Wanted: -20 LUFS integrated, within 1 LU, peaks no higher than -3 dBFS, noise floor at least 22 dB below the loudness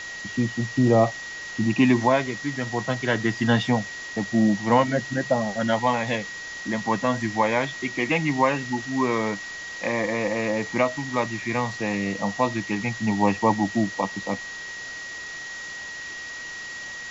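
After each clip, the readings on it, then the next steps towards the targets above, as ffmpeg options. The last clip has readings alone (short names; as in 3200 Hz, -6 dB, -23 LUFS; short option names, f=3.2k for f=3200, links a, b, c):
steady tone 1900 Hz; tone level -34 dBFS; noise floor -36 dBFS; noise floor target -47 dBFS; loudness -25.0 LUFS; peak -6.0 dBFS; loudness target -20.0 LUFS
-> -af "bandreject=f=1.9k:w=30"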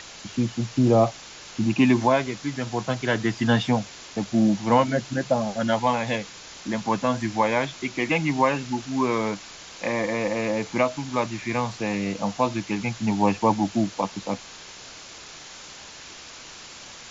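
steady tone none; noise floor -43 dBFS; noise floor target -47 dBFS
-> -af "afftdn=nr=6:nf=-43"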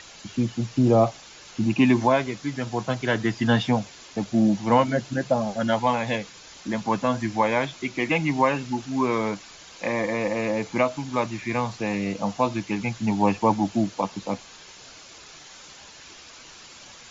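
noise floor -46 dBFS; noise floor target -47 dBFS
-> -af "afftdn=nr=6:nf=-46"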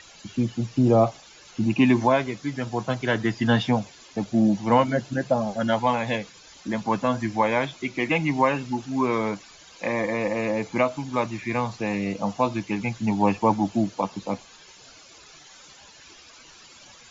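noise floor -50 dBFS; loudness -24.5 LUFS; peak -6.5 dBFS; loudness target -20.0 LUFS
-> -af "volume=4.5dB,alimiter=limit=-3dB:level=0:latency=1"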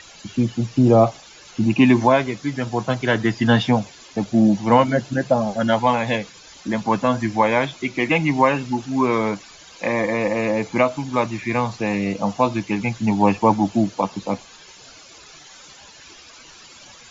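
loudness -20.0 LUFS; peak -3.0 dBFS; noise floor -45 dBFS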